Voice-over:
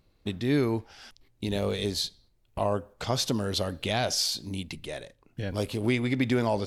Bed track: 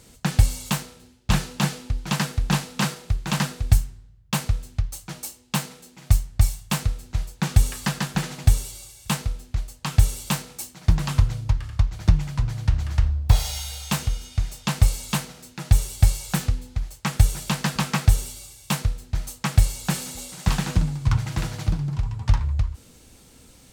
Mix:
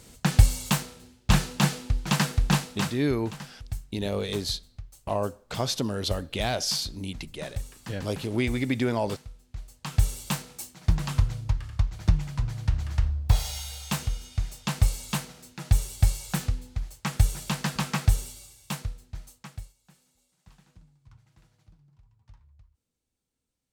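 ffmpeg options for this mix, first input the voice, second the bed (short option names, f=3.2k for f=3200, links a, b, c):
-filter_complex "[0:a]adelay=2500,volume=-0.5dB[a];[1:a]volume=12.5dB,afade=t=out:st=2.45:d=0.66:silence=0.141254,afade=t=in:st=9.43:d=0.67:silence=0.237137,afade=t=out:st=18.08:d=1.66:silence=0.0334965[b];[a][b]amix=inputs=2:normalize=0"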